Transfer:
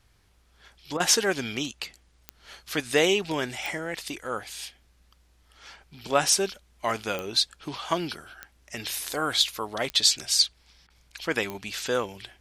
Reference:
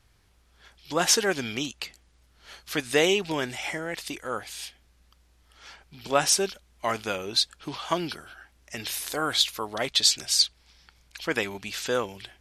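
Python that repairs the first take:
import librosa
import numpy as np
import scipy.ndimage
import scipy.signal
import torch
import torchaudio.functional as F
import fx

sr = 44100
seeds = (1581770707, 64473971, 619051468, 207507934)

y = fx.fix_declick_ar(x, sr, threshold=10.0)
y = fx.fix_interpolate(y, sr, at_s=(0.97, 10.87), length_ms=29.0)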